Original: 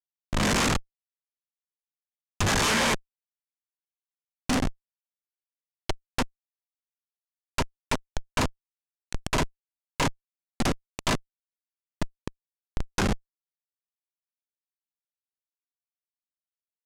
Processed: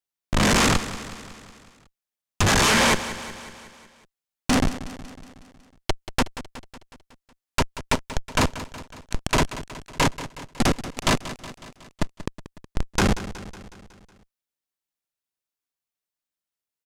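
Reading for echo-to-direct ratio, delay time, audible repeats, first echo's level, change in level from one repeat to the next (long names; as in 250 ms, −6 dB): −12.0 dB, 184 ms, 5, −14.0 dB, −4.5 dB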